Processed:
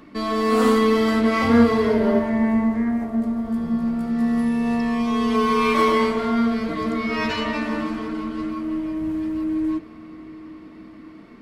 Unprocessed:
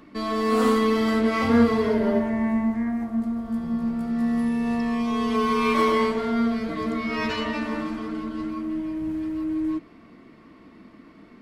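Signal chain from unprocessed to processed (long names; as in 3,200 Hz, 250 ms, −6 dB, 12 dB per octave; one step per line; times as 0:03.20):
on a send at −17 dB: echo with a time of its own for lows and highs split 560 Hz, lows 521 ms, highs 206 ms, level −3 dB + convolution reverb RT60 4.8 s, pre-delay 50 ms
on the sum: level +3 dB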